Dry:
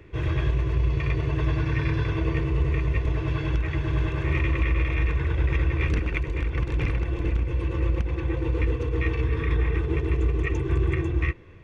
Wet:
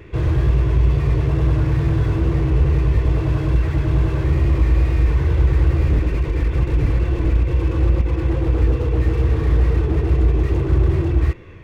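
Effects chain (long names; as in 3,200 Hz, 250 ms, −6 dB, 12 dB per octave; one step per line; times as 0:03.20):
pitch vibrato 2.3 Hz 33 cents
slew-rate limiting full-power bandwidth 13 Hz
level +8 dB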